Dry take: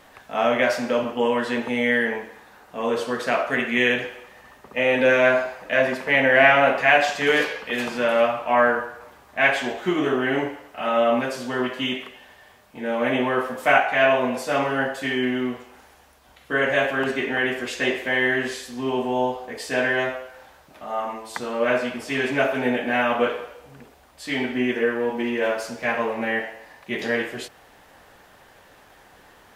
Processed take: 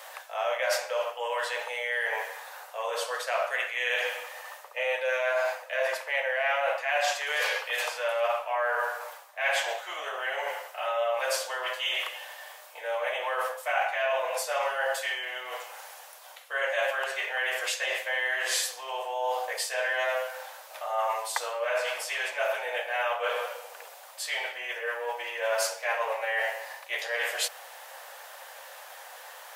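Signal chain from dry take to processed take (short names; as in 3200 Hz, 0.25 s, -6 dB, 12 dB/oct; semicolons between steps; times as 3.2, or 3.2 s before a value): reverse; compressor 10:1, threshold -30 dBFS, peak gain reduction 19.5 dB; reverse; Chebyshev high-pass 520 Hz, order 5; high shelf 6400 Hz +8.5 dB; gain +6 dB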